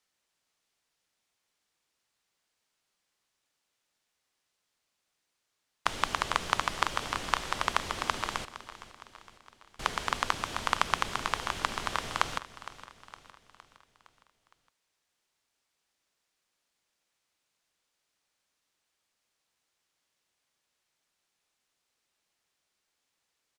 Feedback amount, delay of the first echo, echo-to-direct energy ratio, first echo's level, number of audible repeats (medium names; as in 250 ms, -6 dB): 52%, 462 ms, -14.0 dB, -15.5 dB, 4